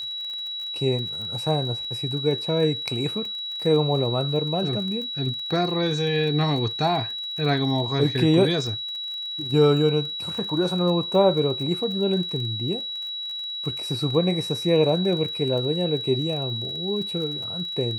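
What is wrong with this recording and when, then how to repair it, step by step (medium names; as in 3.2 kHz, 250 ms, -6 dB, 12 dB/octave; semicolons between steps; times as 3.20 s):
crackle 28 per s -32 dBFS
whine 3.9 kHz -29 dBFS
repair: de-click; band-stop 3.9 kHz, Q 30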